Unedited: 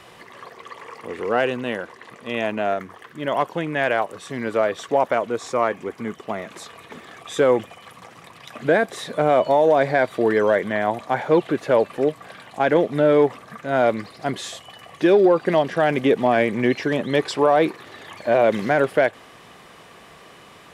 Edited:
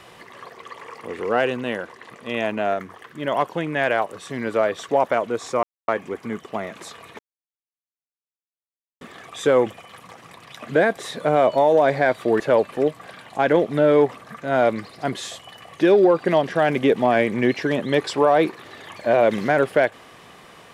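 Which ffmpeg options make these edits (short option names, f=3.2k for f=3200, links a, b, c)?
-filter_complex "[0:a]asplit=4[a][b][c][d];[a]atrim=end=5.63,asetpts=PTS-STARTPTS,afade=t=out:st=5.626:d=0.004:c=hsin,apad=pad_dur=0.25[e];[b]atrim=start=5.63:end=6.94,asetpts=PTS-STARTPTS,afade=t=in:d=0.004:c=hsin,afade=t=out:st=1.306:d=0.004:c=hsin,apad=pad_dur=1.82[f];[c]atrim=start=6.94:end=10.332,asetpts=PTS-STARTPTS,afade=t=in:d=0.004:c=hsin[g];[d]atrim=start=11.608[h];[e][f][g]concat=n=3:v=0:a=1[i];[i][h]acrossfade=d=0.004:c1=hsin:c2=hsin"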